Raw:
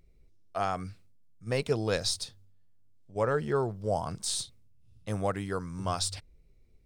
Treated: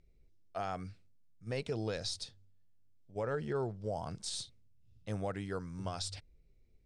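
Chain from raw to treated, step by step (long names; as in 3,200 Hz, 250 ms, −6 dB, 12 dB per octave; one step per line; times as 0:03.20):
low-pass filter 7,300 Hz 12 dB per octave
parametric band 1,100 Hz −5 dB 0.45 octaves
brickwall limiter −22 dBFS, peak gain reduction 5.5 dB
level −5 dB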